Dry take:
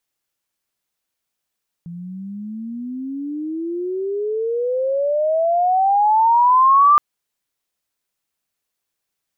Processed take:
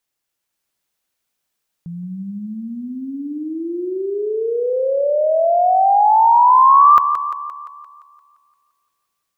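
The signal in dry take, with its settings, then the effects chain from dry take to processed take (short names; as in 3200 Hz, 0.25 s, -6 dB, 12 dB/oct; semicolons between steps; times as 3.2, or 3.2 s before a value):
gliding synth tone sine, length 5.12 s, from 168 Hz, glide +34 st, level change +21.5 dB, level -8 dB
dynamic EQ 270 Hz, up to -3 dB, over -30 dBFS, Q 0.71; AGC gain up to 3 dB; on a send: thinning echo 0.173 s, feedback 56%, high-pass 280 Hz, level -9 dB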